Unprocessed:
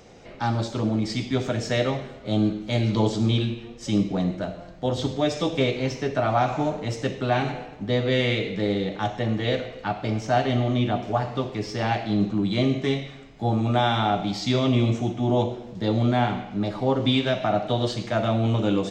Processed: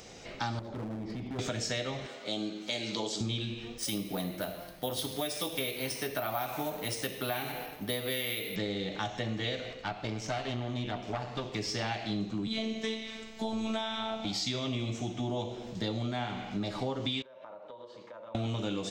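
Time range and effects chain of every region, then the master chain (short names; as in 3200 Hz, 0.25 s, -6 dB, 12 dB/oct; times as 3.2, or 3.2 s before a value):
0.59–1.39 LPF 1100 Hz + compressor 4:1, threshold -30 dBFS + hard clip -31.5 dBFS
2.06–3.21 Bessel high-pass 380 Hz + dynamic EQ 1200 Hz, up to -4 dB, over -42 dBFS, Q 0.95 + upward compressor, threshold -40 dBFS
3.78–8.56 low shelf 210 Hz -8 dB + careless resampling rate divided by 3×, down filtered, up hold
9.73–11.54 high shelf 6500 Hz -6.5 dB + tube stage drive 19 dB, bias 0.7
12.47–14.25 robotiser 222 Hz + three-band squash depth 40%
17.22–18.35 double band-pass 720 Hz, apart 0.79 oct + compressor, threshold -42 dBFS
whole clip: high shelf 2300 Hz +11.5 dB; compressor, threshold -28 dBFS; gain -3 dB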